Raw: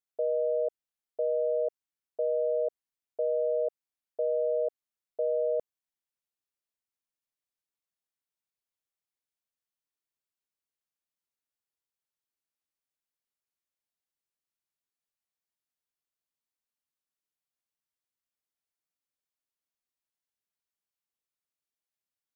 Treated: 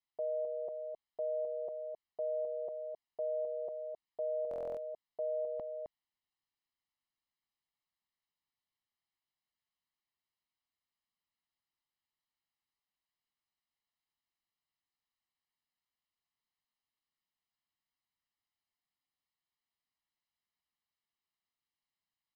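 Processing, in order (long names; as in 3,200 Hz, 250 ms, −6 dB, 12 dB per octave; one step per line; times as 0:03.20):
low-shelf EQ 370 Hz −2.5 dB
comb filter 1 ms, depth 78%
on a send: single-tap delay 262 ms −6.5 dB
on the sum: downsampling to 11,025 Hz
buffer that repeats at 0:04.49, samples 1,024, times 11
level −1 dB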